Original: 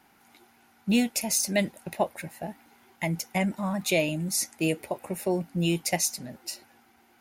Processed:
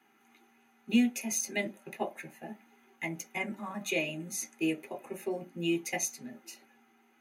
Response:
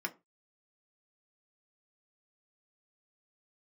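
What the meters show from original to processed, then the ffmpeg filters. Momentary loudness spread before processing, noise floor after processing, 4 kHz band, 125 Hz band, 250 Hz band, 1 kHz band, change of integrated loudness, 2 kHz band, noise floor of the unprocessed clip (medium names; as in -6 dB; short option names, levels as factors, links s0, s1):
13 LU, -66 dBFS, -8.0 dB, -13.0 dB, -4.5 dB, -8.0 dB, -5.5 dB, -3.0 dB, -61 dBFS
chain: -filter_complex "[1:a]atrim=start_sample=2205,asetrate=52920,aresample=44100[s0];[0:a][s0]afir=irnorm=-1:irlink=0,volume=0.501"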